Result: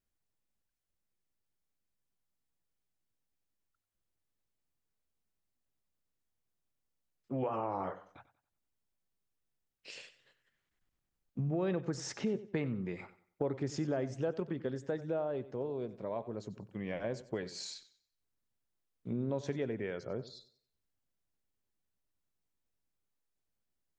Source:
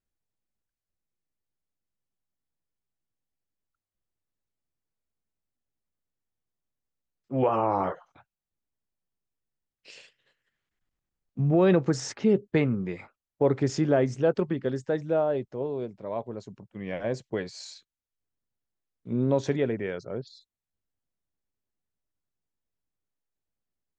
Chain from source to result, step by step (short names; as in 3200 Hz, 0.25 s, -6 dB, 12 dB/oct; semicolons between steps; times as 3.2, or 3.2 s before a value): compressor 2.5:1, threshold -37 dBFS, peak gain reduction 13.5 dB; warbling echo 93 ms, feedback 32%, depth 52 cents, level -16 dB